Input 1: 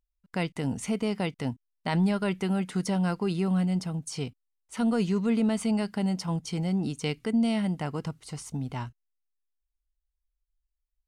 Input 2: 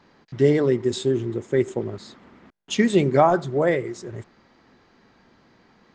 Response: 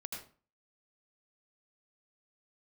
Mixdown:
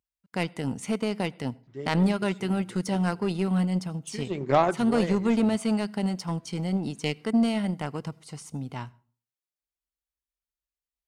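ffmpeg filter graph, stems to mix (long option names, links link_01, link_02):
-filter_complex "[0:a]highpass=95,volume=3dB,asplit=3[link_01][link_02][link_03];[link_02]volume=-17dB[link_04];[1:a]adelay=1350,volume=-3.5dB,afade=type=in:start_time=4.17:duration=0.43:silence=0.266073[link_05];[link_03]apad=whole_len=321755[link_06];[link_05][link_06]sidechaincompress=threshold=-26dB:ratio=8:attack=16:release=347[link_07];[2:a]atrim=start_sample=2205[link_08];[link_04][link_08]afir=irnorm=-1:irlink=0[link_09];[link_01][link_07][link_09]amix=inputs=3:normalize=0,aeval=exprs='0.447*(cos(1*acos(clip(val(0)/0.447,-1,1)))-cos(1*PI/2))+0.0316*(cos(7*acos(clip(val(0)/0.447,-1,1)))-cos(7*PI/2))':channel_layout=same"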